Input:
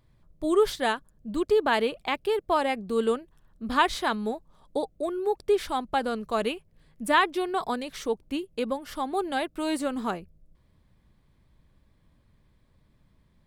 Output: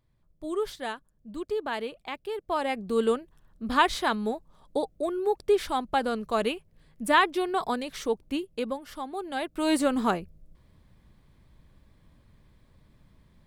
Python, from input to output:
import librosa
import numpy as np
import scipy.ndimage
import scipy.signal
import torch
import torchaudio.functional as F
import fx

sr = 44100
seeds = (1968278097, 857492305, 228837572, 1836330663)

y = fx.gain(x, sr, db=fx.line((2.3, -8.0), (2.86, 0.5), (8.38, 0.5), (9.2, -7.0), (9.73, 4.5)))